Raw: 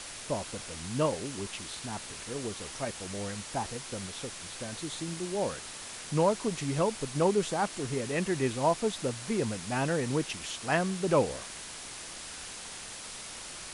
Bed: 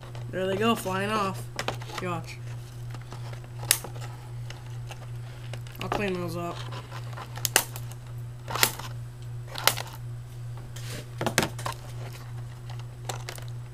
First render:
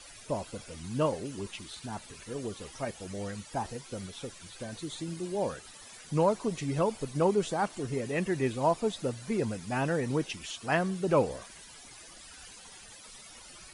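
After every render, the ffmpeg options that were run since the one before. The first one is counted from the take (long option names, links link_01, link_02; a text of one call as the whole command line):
ffmpeg -i in.wav -af "afftdn=noise_reduction=14:noise_floor=-43" out.wav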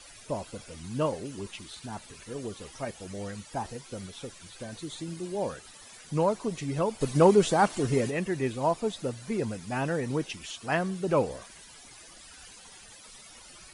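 ffmpeg -i in.wav -filter_complex "[0:a]asplit=3[link_01][link_02][link_03];[link_01]afade=type=out:start_time=7:duration=0.02[link_04];[link_02]acontrast=87,afade=type=in:start_time=7:duration=0.02,afade=type=out:start_time=8.09:duration=0.02[link_05];[link_03]afade=type=in:start_time=8.09:duration=0.02[link_06];[link_04][link_05][link_06]amix=inputs=3:normalize=0" out.wav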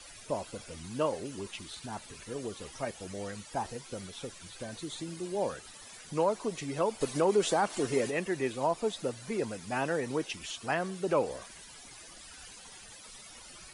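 ffmpeg -i in.wav -filter_complex "[0:a]acrossover=split=280[link_01][link_02];[link_01]acompressor=threshold=-44dB:ratio=4[link_03];[link_02]alimiter=limit=-18dB:level=0:latency=1:release=101[link_04];[link_03][link_04]amix=inputs=2:normalize=0" out.wav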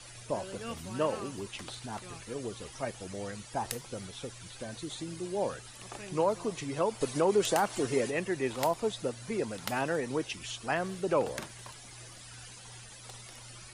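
ffmpeg -i in.wav -i bed.wav -filter_complex "[1:a]volume=-17dB[link_01];[0:a][link_01]amix=inputs=2:normalize=0" out.wav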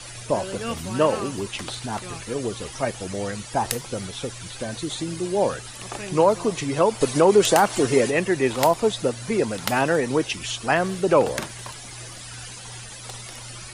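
ffmpeg -i in.wav -af "volume=10.5dB" out.wav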